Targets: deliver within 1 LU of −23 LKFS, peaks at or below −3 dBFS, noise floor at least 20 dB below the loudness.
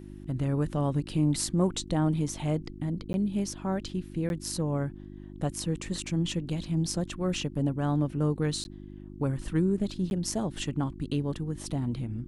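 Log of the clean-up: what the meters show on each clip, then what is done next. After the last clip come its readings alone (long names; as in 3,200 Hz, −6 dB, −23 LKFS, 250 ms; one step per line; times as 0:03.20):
number of dropouts 4; longest dropout 11 ms; mains hum 50 Hz; hum harmonics up to 350 Hz; level of the hum −43 dBFS; integrated loudness −30.5 LKFS; sample peak −13.0 dBFS; target loudness −23.0 LKFS
→ repair the gap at 0:03.13/0:04.29/0:08.64/0:10.10, 11 ms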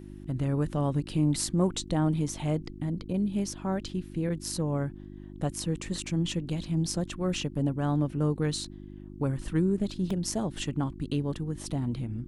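number of dropouts 0; mains hum 50 Hz; hum harmonics up to 350 Hz; level of the hum −43 dBFS
→ hum removal 50 Hz, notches 7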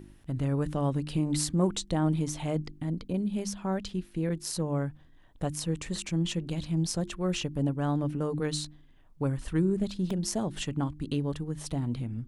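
mains hum none found; integrated loudness −31.0 LKFS; sample peak −13.0 dBFS; target loudness −23.0 LKFS
→ level +8 dB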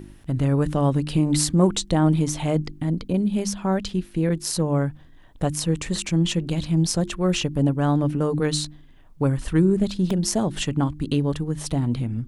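integrated loudness −23.0 LKFS; sample peak −5.0 dBFS; background noise floor −48 dBFS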